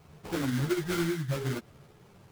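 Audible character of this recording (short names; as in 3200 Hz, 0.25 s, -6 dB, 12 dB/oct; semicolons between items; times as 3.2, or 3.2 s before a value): aliases and images of a low sample rate 1800 Hz, jitter 20%; a shimmering, thickened sound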